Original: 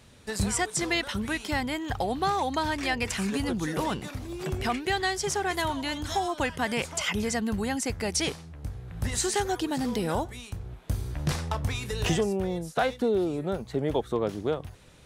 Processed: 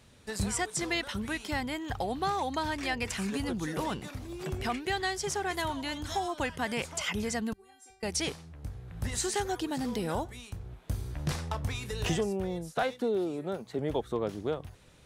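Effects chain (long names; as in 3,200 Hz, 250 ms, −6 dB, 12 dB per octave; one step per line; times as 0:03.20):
0:07.53–0:08.03: stiff-string resonator 380 Hz, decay 0.6 s, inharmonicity 0.002
0:12.83–0:13.79: high-pass filter 170 Hz 12 dB per octave
level −4 dB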